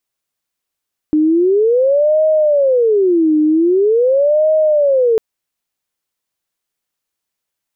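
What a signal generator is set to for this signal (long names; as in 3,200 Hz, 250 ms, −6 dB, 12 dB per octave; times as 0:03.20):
siren wail 305–626 Hz 0.44 per second sine −9 dBFS 4.05 s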